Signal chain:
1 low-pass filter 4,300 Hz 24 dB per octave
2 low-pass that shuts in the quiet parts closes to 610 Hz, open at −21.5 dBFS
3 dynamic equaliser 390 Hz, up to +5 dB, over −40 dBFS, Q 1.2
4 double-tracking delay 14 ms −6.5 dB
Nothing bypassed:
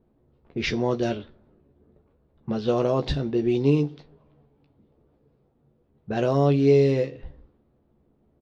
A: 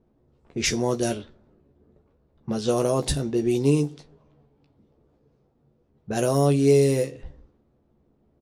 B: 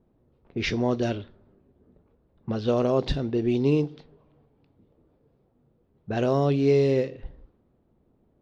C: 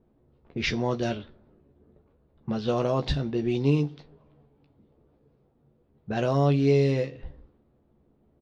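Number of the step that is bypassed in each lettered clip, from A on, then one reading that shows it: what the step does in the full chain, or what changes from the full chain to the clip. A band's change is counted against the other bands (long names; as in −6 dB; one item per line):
1, 4 kHz band +3.5 dB
4, change in momentary loudness spread −1 LU
3, change in integrated loudness −3.0 LU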